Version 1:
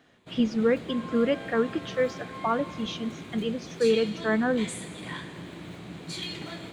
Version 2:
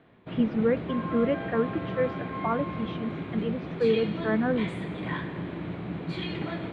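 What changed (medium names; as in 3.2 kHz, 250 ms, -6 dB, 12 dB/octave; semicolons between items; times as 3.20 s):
background +7.5 dB; master: add distance through air 490 m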